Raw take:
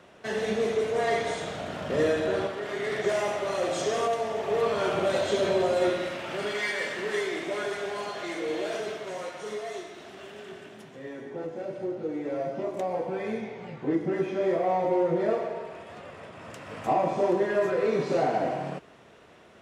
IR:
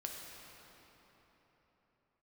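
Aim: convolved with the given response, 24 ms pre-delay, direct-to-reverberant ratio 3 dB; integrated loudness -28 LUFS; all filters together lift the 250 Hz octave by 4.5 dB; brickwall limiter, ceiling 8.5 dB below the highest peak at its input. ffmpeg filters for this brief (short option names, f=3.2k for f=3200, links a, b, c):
-filter_complex "[0:a]equalizer=f=250:t=o:g=7,alimiter=limit=-20dB:level=0:latency=1,asplit=2[a][b];[1:a]atrim=start_sample=2205,adelay=24[c];[b][c]afir=irnorm=-1:irlink=0,volume=-2dB[d];[a][d]amix=inputs=2:normalize=0,volume=-0.5dB"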